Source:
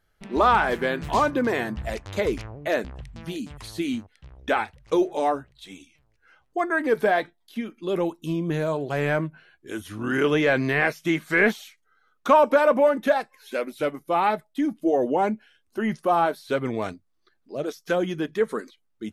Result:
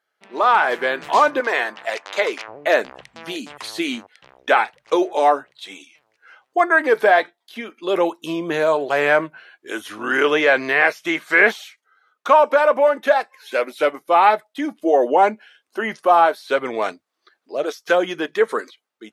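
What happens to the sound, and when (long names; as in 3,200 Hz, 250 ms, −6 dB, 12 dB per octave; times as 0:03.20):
0:01.40–0:02.48: meter weighting curve A
whole clip: high-pass filter 510 Hz 12 dB per octave; high-shelf EQ 7,200 Hz −9 dB; automatic gain control gain up to 12.5 dB; level −1 dB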